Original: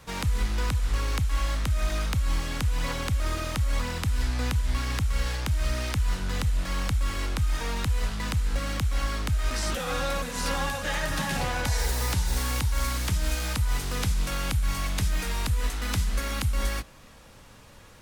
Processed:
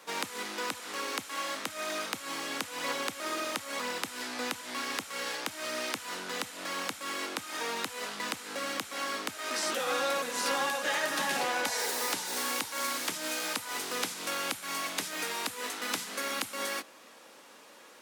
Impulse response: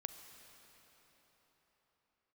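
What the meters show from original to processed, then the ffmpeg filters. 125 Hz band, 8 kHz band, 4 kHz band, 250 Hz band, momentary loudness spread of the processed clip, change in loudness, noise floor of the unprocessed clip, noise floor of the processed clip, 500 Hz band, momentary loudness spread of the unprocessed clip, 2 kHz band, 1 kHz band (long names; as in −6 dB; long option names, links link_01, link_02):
−29.5 dB, 0.0 dB, 0.0 dB, −6.0 dB, 6 LU, −4.5 dB, −50 dBFS, −54 dBFS, 0.0 dB, 2 LU, 0.0 dB, 0.0 dB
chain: -af "highpass=frequency=280:width=0.5412,highpass=frequency=280:width=1.3066"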